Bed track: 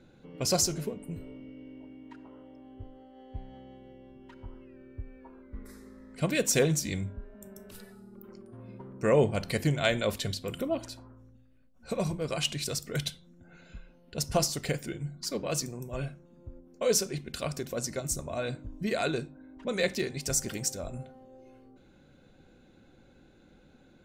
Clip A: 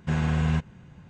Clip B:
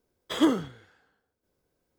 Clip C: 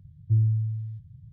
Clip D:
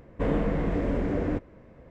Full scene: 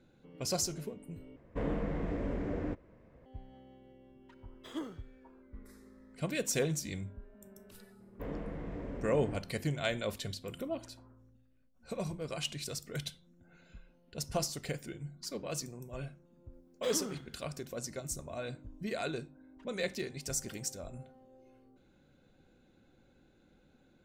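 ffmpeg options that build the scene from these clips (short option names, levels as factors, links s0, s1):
-filter_complex "[4:a]asplit=2[s0][s1];[2:a]asplit=2[s2][s3];[0:a]volume=0.447[s4];[s3]acompressor=threshold=0.0398:ratio=6:attack=3.2:release=140:knee=1:detection=peak[s5];[s4]asplit=2[s6][s7];[s6]atrim=end=1.364[s8];[s0]atrim=end=1.9,asetpts=PTS-STARTPTS,volume=0.376[s9];[s7]atrim=start=3.256[s10];[s2]atrim=end=1.98,asetpts=PTS-STARTPTS,volume=0.126,afade=t=in:d=0.004:c=hsin,afade=t=out:st=1.976:d=0.004:c=hsin,adelay=4340[s11];[s1]atrim=end=1.9,asetpts=PTS-STARTPTS,volume=0.188,afade=t=in:d=0.004:c=hsin,afade=t=out:st=1.896:d=0.004:c=hsin,adelay=8000[s12];[s5]atrim=end=1.98,asetpts=PTS-STARTPTS,volume=0.398,afade=t=in:d=0.004:c=hsin,afade=t=out:st=1.976:d=0.004:c=hsin,adelay=16530[s13];[s8][s9]acrossfade=d=0.004:c1=hsin:c2=hsin[s14];[s14][s10]acrossfade=d=0.004:c1=hsin:c2=hsin[s15];[s15][s11][s12][s13]amix=inputs=4:normalize=0"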